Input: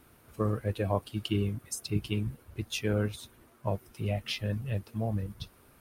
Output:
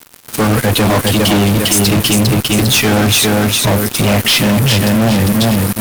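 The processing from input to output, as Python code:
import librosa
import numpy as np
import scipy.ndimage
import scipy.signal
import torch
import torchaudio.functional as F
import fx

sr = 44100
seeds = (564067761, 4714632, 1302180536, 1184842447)

p1 = scipy.signal.sosfilt(scipy.signal.butter(4, 100.0, 'highpass', fs=sr, output='sos'), x)
p2 = fx.peak_eq(p1, sr, hz=250.0, db=6.5, octaves=0.62)
p3 = fx.notch(p2, sr, hz=2700.0, q=27.0)
p4 = fx.echo_feedback(p3, sr, ms=402, feedback_pct=28, wet_db=-6.5)
p5 = fx.over_compress(p4, sr, threshold_db=-37.0, ratio=-1.0)
p6 = p4 + (p5 * 10.0 ** (-3.0 / 20.0))
p7 = fx.high_shelf(p6, sr, hz=2200.0, db=10.0)
p8 = fx.fuzz(p7, sr, gain_db=39.0, gate_db=-40.0)
y = p8 * 10.0 ** (4.0 / 20.0)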